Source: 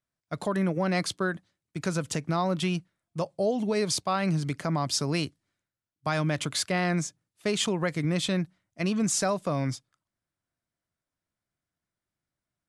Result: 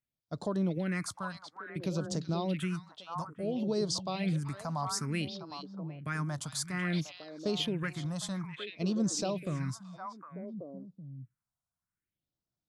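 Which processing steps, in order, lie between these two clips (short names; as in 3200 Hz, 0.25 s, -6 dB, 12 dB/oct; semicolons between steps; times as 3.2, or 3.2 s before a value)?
delay with a stepping band-pass 0.379 s, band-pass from 2900 Hz, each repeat -1.4 oct, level -1 dB; phaser stages 4, 0.58 Hz, lowest notch 370–2300 Hz; gain -4.5 dB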